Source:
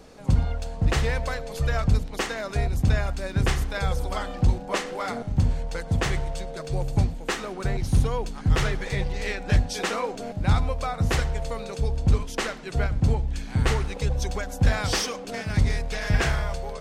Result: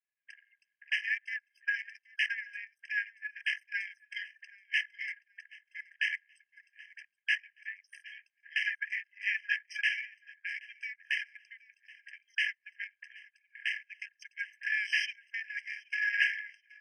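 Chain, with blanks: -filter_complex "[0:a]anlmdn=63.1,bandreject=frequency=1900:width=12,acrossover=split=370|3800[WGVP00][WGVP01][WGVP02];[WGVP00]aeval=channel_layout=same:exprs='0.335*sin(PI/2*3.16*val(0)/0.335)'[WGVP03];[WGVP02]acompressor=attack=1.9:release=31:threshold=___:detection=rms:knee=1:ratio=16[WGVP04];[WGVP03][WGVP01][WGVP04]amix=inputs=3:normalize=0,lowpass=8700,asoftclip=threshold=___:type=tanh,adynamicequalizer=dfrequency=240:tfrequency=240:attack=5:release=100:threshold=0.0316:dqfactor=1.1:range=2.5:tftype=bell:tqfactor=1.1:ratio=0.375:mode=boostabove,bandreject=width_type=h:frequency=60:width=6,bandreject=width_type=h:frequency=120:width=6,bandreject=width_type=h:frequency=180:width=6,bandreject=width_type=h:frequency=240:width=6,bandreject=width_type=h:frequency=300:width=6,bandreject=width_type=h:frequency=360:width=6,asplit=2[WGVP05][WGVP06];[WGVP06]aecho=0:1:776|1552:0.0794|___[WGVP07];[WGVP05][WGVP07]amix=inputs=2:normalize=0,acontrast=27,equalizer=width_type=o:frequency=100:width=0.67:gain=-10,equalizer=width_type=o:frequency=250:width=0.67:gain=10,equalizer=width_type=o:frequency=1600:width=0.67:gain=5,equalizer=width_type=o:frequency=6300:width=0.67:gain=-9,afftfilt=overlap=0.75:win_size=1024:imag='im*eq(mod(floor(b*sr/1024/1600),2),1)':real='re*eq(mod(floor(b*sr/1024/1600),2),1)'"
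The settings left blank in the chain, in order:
-48dB, -8dB, 0.0191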